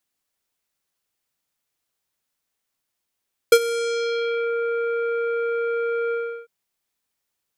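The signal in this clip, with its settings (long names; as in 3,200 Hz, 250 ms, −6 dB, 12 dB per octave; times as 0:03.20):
subtractive voice square A#4 24 dB per octave, low-pass 2,000 Hz, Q 1.1, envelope 3 octaves, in 1.00 s, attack 4.7 ms, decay 0.06 s, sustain −16 dB, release 0.35 s, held 2.60 s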